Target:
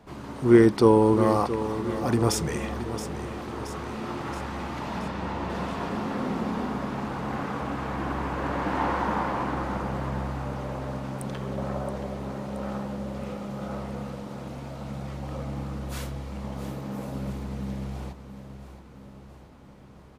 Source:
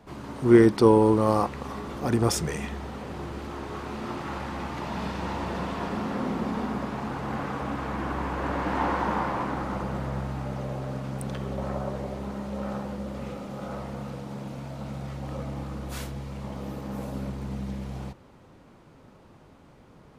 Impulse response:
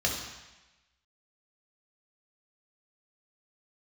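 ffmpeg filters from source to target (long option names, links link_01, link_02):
-filter_complex "[0:a]asettb=1/sr,asplit=3[link_01][link_02][link_03];[link_01]atrim=end=4.994[link_04];[link_02]atrim=start=4.99:end=5.5,asetpts=PTS-STARTPTS,afade=type=in:duration=0.004:curve=qsin,afade=type=out:start_time=0.506:duration=0.004:curve=qsin,highshelf=frequency=5100:gain=-10[link_05];[link_03]atrim=start=5.496[link_06];[link_04][link_05]acrossfade=duration=0.004:curve1=hsin:curve2=qsin[link_07];[link_07][link_06]acrossfade=duration=0.004:curve1=qsin:curve2=hsin,aecho=1:1:674|1348|2022|2696|3370|4044:0.266|0.149|0.0834|0.0467|0.0262|0.0147"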